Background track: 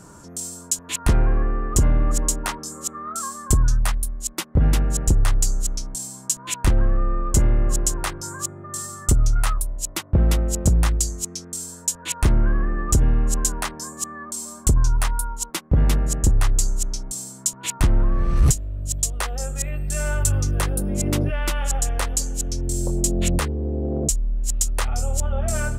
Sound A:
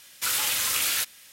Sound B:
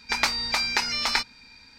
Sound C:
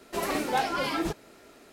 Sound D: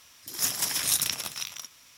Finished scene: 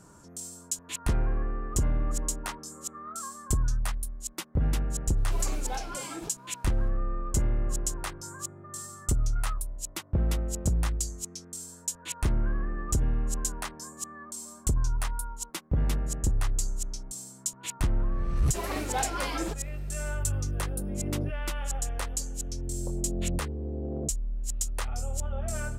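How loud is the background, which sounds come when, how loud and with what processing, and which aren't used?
background track -9 dB
5.17 add C -10 dB + notch 1900 Hz, Q 9.8
18.41 add C -4 dB
not used: A, B, D

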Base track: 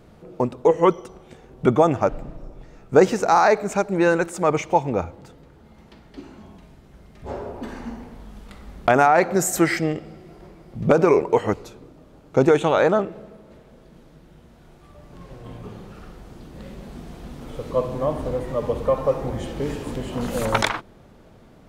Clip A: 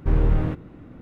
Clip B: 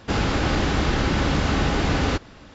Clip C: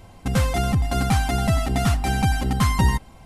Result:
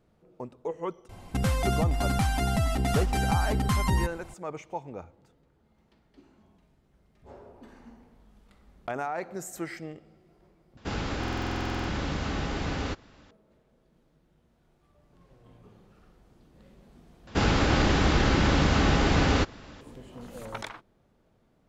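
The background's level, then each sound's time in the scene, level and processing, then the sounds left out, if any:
base track -17 dB
1.09 add C -0.5 dB + compressor 2:1, threshold -25 dBFS
10.77 replace with B -9.5 dB + stuck buffer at 0.42, samples 2048, times 14
17.27 replace with B -1 dB
not used: A

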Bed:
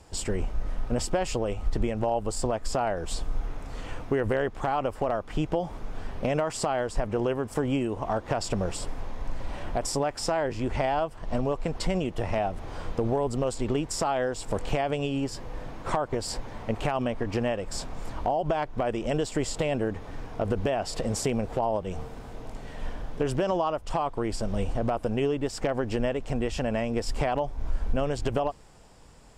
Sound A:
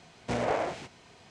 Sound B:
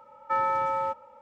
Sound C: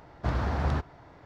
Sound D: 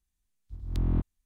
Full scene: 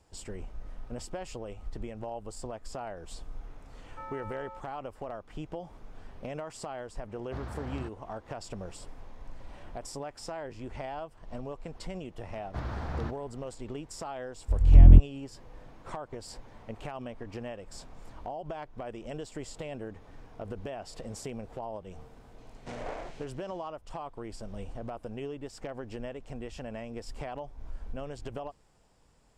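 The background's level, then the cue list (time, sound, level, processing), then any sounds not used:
bed -12 dB
3.67 add B -17.5 dB
7.08 add C -11.5 dB
12.3 add C -7.5 dB
13.98 add D -2 dB + tilt -4 dB/oct
22.38 add A -10.5 dB

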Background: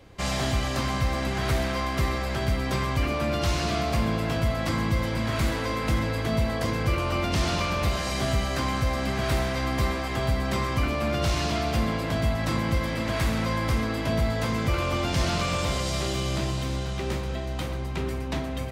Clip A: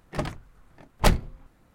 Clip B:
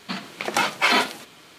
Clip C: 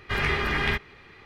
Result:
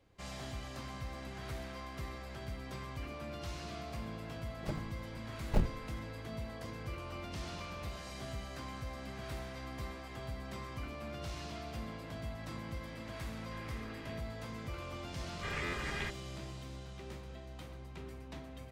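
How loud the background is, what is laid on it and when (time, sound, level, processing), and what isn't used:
background -17.5 dB
4.5 add A -8.5 dB + median filter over 41 samples
13.42 add C -15.5 dB + compressor 2:1, threshold -44 dBFS
15.33 add C -14 dB + stuck buffer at 0.3
not used: B

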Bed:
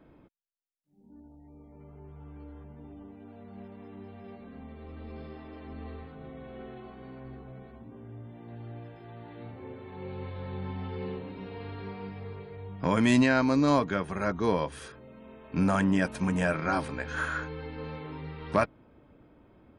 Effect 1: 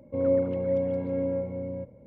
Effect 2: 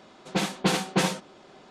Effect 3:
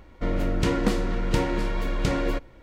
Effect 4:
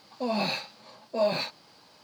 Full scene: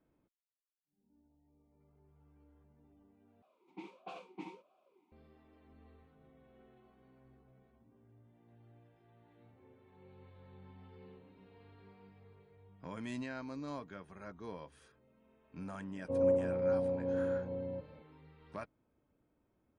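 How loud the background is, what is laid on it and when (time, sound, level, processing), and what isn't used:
bed -19.5 dB
3.42 replace with 2 -11 dB + vowel sweep a-u 1.5 Hz
15.96 add 1 -8 dB + synth low-pass 920 Hz, resonance Q 1.8
not used: 3, 4

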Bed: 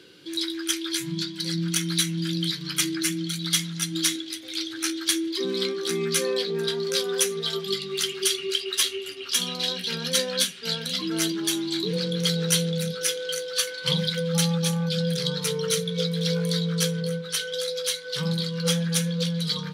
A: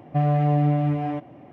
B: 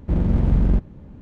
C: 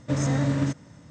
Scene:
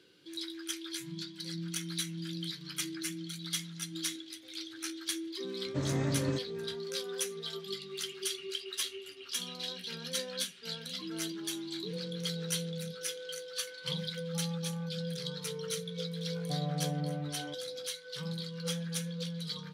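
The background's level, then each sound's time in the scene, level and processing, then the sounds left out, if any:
bed -12 dB
5.66 add C -8.5 dB
16.35 add A -16 dB
not used: B

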